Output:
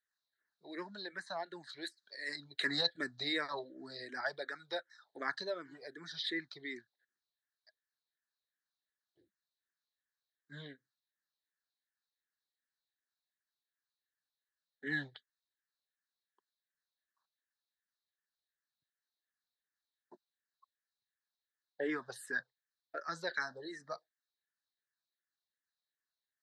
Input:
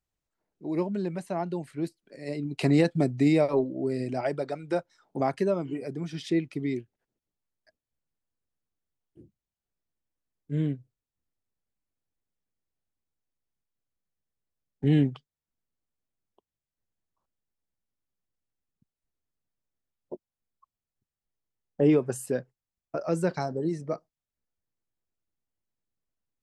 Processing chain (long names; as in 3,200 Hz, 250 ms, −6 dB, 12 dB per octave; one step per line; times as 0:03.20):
pair of resonant band-passes 2,600 Hz, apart 1.2 octaves
0:01.69–0:02.36: high-shelf EQ 2,200 Hz +9 dB
frequency shifter mixed with the dry sound −2.7 Hz
level +13 dB